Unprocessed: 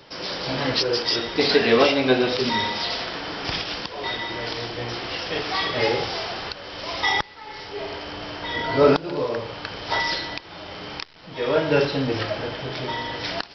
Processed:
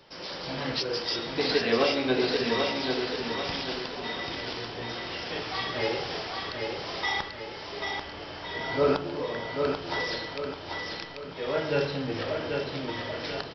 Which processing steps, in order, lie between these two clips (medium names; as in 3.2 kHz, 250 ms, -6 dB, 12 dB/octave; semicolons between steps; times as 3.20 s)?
feedback delay 789 ms, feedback 45%, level -4.5 dB; on a send at -9 dB: reverberation RT60 0.65 s, pre-delay 5 ms; on the sum: trim -8 dB